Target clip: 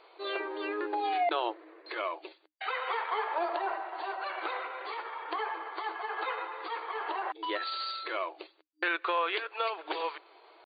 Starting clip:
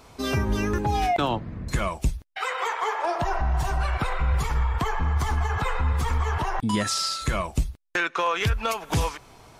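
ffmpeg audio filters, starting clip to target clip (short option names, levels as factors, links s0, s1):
-af "afftfilt=real='re*between(b*sr/4096,310,4700)':imag='im*between(b*sr/4096,310,4700)':win_size=4096:overlap=0.75,atempo=0.9,volume=0.562"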